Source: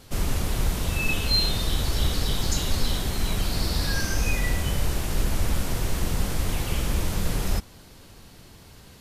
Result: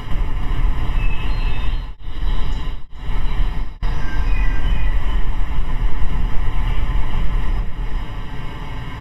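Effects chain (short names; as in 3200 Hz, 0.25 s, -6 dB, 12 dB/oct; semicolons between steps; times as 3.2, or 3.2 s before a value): upward compressor, threshold -30 dBFS; comb 6.9 ms, depth 54%; compressor 6:1, threshold -29 dBFS, peak gain reduction 15 dB; polynomial smoothing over 25 samples; bell 170 Hz -5 dB 0.85 oct; notch 820 Hz, Q 22; echo 0.431 s -4 dB; reverb RT60 0.55 s, pre-delay 3 ms, DRR 6.5 dB; 1.52–3.83 beating tremolo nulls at 1.1 Hz; gain +5 dB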